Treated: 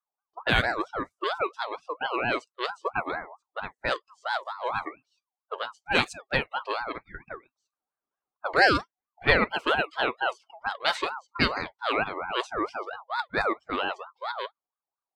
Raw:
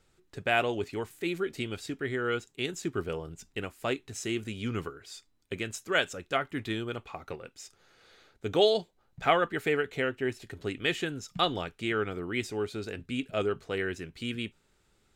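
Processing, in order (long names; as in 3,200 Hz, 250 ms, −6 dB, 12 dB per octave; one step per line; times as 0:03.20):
noise reduction from a noise print of the clip's start 30 dB
low-pass that shuts in the quiet parts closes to 540 Hz, open at −24 dBFS
ring modulator whose carrier an LFO sweeps 970 Hz, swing 25%, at 4.4 Hz
level +6 dB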